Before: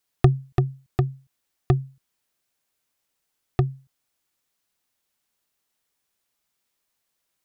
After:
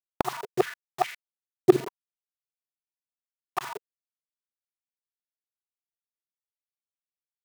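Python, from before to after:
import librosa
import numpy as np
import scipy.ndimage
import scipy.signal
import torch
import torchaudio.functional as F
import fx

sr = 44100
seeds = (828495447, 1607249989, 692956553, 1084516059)

p1 = fx.local_reverse(x, sr, ms=41.0)
p2 = 10.0 ** (-22.5 / 20.0) * np.tanh(p1 / 10.0 ** (-22.5 / 20.0))
p3 = p1 + (p2 * librosa.db_to_amplitude(-6.0))
p4 = fx.quant_dither(p3, sr, seeds[0], bits=6, dither='none')
y = fx.filter_held_highpass(p4, sr, hz=4.8, low_hz=360.0, high_hz=2100.0)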